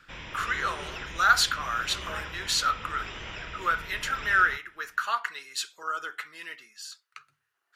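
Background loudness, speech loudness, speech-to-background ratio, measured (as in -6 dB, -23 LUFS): -39.0 LUFS, -27.5 LUFS, 11.5 dB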